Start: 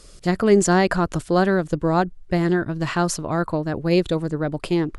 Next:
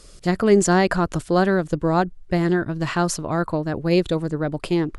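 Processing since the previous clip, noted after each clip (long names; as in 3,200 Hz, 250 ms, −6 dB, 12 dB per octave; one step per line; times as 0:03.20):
no processing that can be heard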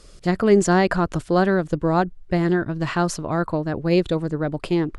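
high-shelf EQ 6,600 Hz −7.5 dB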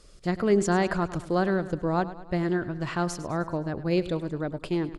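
repeating echo 103 ms, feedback 53%, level −15 dB
level −6.5 dB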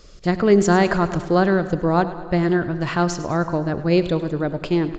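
dense smooth reverb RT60 2.8 s, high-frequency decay 0.6×, DRR 15 dB
downsampling to 16,000 Hz
level +7.5 dB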